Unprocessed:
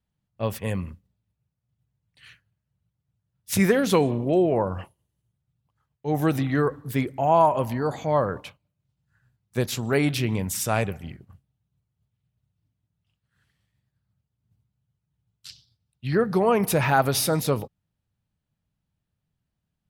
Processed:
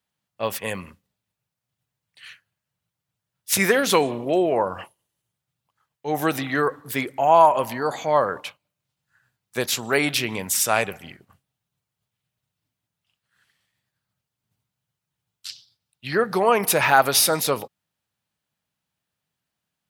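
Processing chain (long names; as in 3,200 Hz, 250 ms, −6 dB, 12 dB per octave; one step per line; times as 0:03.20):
high-pass filter 850 Hz 6 dB per octave
level +7.5 dB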